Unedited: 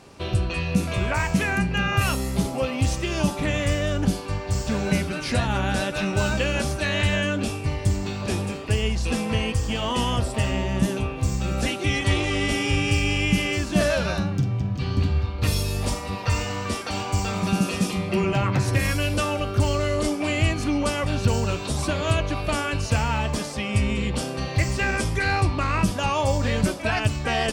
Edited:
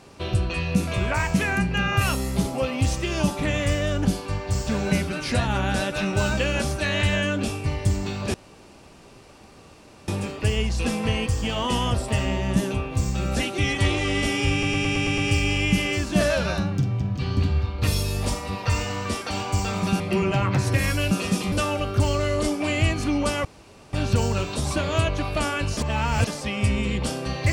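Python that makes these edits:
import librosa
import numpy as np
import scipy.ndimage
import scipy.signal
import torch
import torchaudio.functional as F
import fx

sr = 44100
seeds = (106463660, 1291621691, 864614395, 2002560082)

y = fx.edit(x, sr, fx.insert_room_tone(at_s=8.34, length_s=1.74),
    fx.stutter(start_s=12.78, slice_s=0.11, count=7),
    fx.move(start_s=17.6, length_s=0.41, to_s=19.12),
    fx.insert_room_tone(at_s=21.05, length_s=0.48),
    fx.reverse_span(start_s=22.89, length_s=0.5), tone=tone)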